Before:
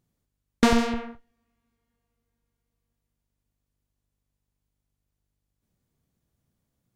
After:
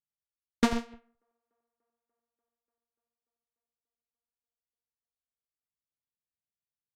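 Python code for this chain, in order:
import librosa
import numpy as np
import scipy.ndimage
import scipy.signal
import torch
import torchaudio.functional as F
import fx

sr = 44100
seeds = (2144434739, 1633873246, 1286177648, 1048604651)

y = fx.echo_wet_bandpass(x, sr, ms=293, feedback_pct=77, hz=690.0, wet_db=-23)
y = fx.upward_expand(y, sr, threshold_db=-34.0, expansion=2.5)
y = y * 10.0 ** (-3.5 / 20.0)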